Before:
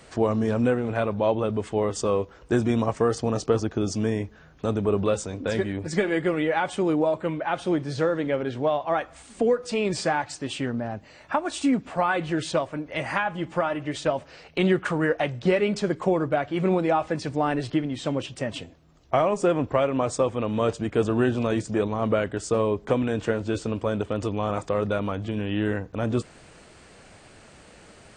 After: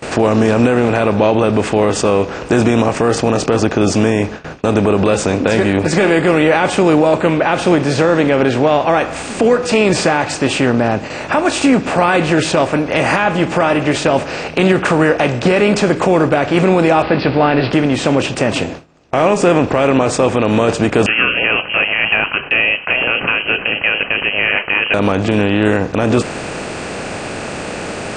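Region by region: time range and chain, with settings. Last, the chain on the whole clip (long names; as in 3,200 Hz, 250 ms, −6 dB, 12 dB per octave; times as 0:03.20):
0:17.02–0:17.71: hold until the input has moved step −44.5 dBFS + Butterworth low-pass 4,700 Hz 96 dB per octave + double-tracking delay 15 ms −11.5 dB
0:21.06–0:24.94: low-shelf EQ 460 Hz −7 dB + voice inversion scrambler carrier 3,000 Hz
whole clip: compressor on every frequency bin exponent 0.6; noise gate with hold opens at −25 dBFS; boost into a limiter +10.5 dB; level −1 dB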